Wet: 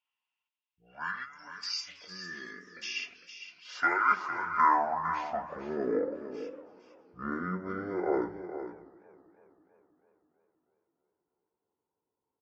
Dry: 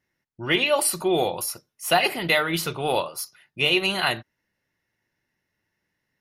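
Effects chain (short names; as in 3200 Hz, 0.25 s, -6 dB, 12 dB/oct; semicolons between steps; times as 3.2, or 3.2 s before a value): spectral gain 0.62–0.95, 250–9100 Hz -16 dB; band-pass sweep 5700 Hz -> 800 Hz, 1.36–3.23; speed mistake 15 ips tape played at 7.5 ips; echo 0.456 s -10.5 dB; warbling echo 0.324 s, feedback 61%, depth 96 cents, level -21.5 dB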